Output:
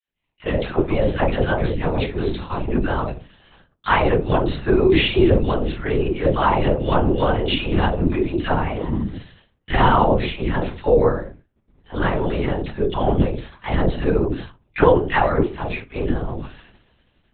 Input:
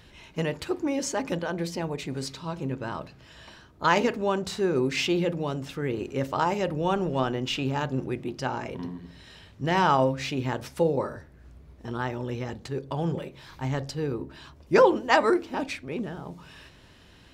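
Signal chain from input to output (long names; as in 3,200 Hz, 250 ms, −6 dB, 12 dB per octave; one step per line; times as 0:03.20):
rectangular room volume 160 cubic metres, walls furnished, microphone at 1.1 metres
automatic gain control gain up to 11 dB
all-pass dispersion lows, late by 95 ms, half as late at 900 Hz
downward expander −26 dBFS
linear-prediction vocoder at 8 kHz whisper
level −1.5 dB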